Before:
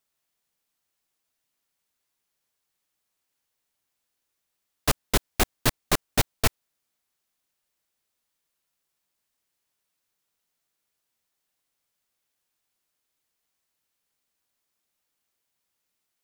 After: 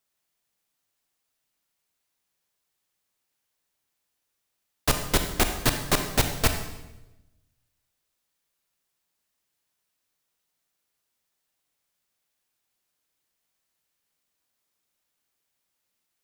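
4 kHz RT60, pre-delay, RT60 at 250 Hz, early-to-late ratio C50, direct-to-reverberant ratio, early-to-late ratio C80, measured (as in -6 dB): 0.90 s, 30 ms, 1.3 s, 7.5 dB, 6.0 dB, 9.5 dB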